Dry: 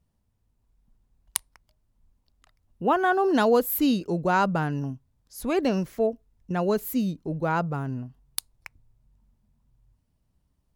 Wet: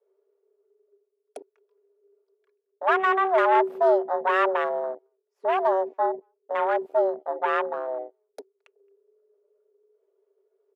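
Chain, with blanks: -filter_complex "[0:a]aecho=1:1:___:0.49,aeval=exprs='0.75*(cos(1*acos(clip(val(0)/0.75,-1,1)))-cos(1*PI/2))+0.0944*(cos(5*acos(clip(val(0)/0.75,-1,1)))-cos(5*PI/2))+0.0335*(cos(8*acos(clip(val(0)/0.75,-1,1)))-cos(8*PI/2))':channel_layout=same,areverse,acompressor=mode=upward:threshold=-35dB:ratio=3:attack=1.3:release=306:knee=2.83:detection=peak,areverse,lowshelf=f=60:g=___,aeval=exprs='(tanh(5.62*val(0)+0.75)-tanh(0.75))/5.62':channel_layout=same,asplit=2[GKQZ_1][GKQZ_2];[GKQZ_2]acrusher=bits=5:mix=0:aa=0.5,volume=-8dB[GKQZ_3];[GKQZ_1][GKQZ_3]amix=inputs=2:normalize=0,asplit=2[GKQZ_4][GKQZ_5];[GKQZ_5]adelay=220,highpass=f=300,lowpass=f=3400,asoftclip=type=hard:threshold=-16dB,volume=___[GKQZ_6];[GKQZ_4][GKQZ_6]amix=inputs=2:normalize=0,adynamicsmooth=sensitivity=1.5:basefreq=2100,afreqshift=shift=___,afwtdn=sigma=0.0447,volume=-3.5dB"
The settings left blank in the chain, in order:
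3.8, 6.5, -26dB, 380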